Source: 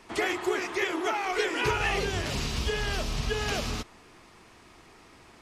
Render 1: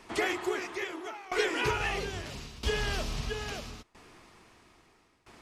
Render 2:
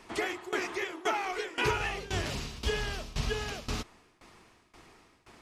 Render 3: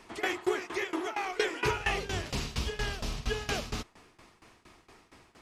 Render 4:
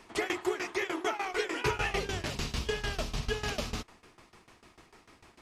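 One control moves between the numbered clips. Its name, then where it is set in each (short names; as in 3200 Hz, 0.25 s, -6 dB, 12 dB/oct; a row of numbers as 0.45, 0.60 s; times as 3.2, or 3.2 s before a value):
tremolo, rate: 0.76, 1.9, 4.3, 6.7 Hz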